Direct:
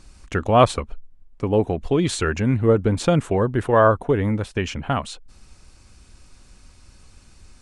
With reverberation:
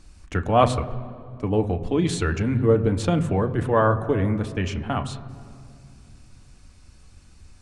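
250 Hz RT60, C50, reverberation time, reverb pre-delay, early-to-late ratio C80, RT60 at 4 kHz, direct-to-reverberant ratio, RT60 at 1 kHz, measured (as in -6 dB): 3.3 s, 14.0 dB, 2.3 s, 3 ms, 14.5 dB, 1.6 s, 7.0 dB, 2.2 s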